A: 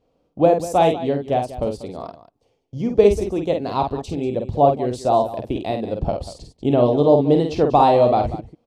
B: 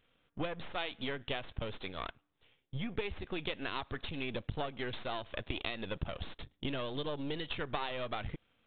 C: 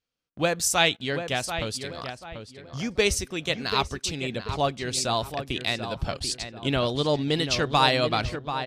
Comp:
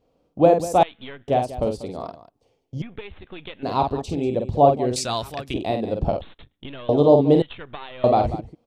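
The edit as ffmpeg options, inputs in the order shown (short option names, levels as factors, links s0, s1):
-filter_complex "[1:a]asplit=4[s0][s1][s2][s3];[0:a]asplit=6[s4][s5][s6][s7][s8][s9];[s4]atrim=end=0.832[s10];[s0]atrim=start=0.828:end=1.282[s11];[s5]atrim=start=1.278:end=2.822[s12];[s1]atrim=start=2.818:end=3.632[s13];[s6]atrim=start=3.628:end=4.962[s14];[2:a]atrim=start=4.958:end=5.542[s15];[s7]atrim=start=5.538:end=6.212[s16];[s2]atrim=start=6.208:end=6.892[s17];[s8]atrim=start=6.888:end=7.422[s18];[s3]atrim=start=7.418:end=8.042[s19];[s9]atrim=start=8.038[s20];[s10][s11]acrossfade=d=0.004:c1=hsin:c2=hsin[s21];[s21][s12]acrossfade=d=0.004:c1=hsin:c2=hsin[s22];[s22][s13]acrossfade=d=0.004:c1=hsin:c2=hsin[s23];[s23][s14]acrossfade=d=0.004:c1=hsin:c2=hsin[s24];[s24][s15]acrossfade=d=0.004:c1=hsin:c2=hsin[s25];[s25][s16]acrossfade=d=0.004:c1=hsin:c2=hsin[s26];[s26][s17]acrossfade=d=0.004:c1=hsin:c2=hsin[s27];[s27][s18]acrossfade=d=0.004:c1=hsin:c2=hsin[s28];[s28][s19]acrossfade=d=0.004:c1=hsin:c2=hsin[s29];[s29][s20]acrossfade=d=0.004:c1=hsin:c2=hsin"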